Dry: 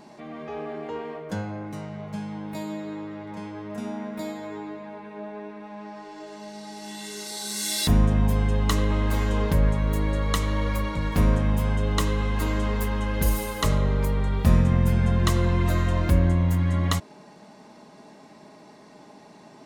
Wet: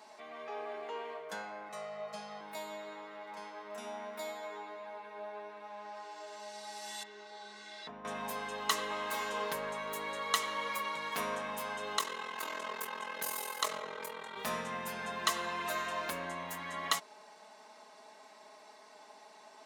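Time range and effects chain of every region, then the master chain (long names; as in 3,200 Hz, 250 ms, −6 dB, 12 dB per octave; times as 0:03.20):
0:01.69–0:02.41: high-shelf EQ 11,000 Hz −11.5 dB + comb filter 1.6 ms, depth 98%
0:07.03–0:08.05: downward compressor 2 to 1, threshold −28 dBFS + head-to-tape spacing loss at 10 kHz 40 dB
0:11.97–0:14.37: low-shelf EQ 140 Hz −9 dB + ring modulation 21 Hz
whole clip: high-pass filter 730 Hz 12 dB per octave; comb filter 4.6 ms, depth 43%; level −3 dB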